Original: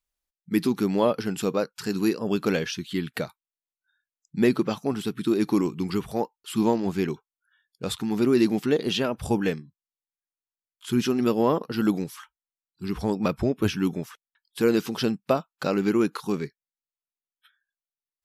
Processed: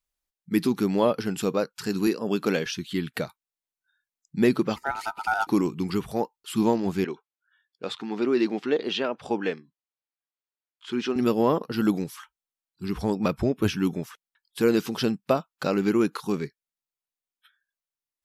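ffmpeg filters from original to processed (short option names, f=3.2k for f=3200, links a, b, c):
-filter_complex "[0:a]asettb=1/sr,asplit=3[a][b][c];[a]atrim=end=2.074[d];[b]atrim=start=2.07:end=2.66,asetpts=PTS-STARTPTS,afade=t=in:d=0.004:c=qsin,afade=t=out:st=0.586:d=0.004:c=qsin,highpass=160[e];[c]atrim=start=2.656[f];[d][e]acrossfade=d=0.004:c1=hsin:c2=qsin[g];[g][f]acrossfade=d=0.004:c1=qsin:c2=hsin,asettb=1/sr,asplit=3[h][i][j];[h]atrim=end=4.764[k];[i]atrim=start=4.76:end=5.47,asetpts=PTS-STARTPTS,afade=t=in:d=0.004:c=qsin,afade=t=out:st=0.706:d=0.004:c=qsin,aeval=exprs='val(0)*sin(2*PI*1100*n/s)':c=same[l];[j]atrim=start=5.466[m];[k][l]acrossfade=d=0.004:c1=hsin:c2=qsin[n];[n][m]acrossfade=d=0.004:c1=qsin:c2=hsin,asettb=1/sr,asplit=3[o][p][q];[o]atrim=end=7.044[r];[p]atrim=start=7.04:end=11.16,asetpts=PTS-STARTPTS,afade=t=in:d=0.004:c=qsin,afade=t=out:st=4.116:d=0.004:c=qsin,highpass=310,lowpass=4k[s];[q]atrim=start=11.156[t];[r][s]acrossfade=d=0.004:c1=hsin:c2=qsin[u];[u][t]acrossfade=d=0.004:c1=qsin:c2=hsin"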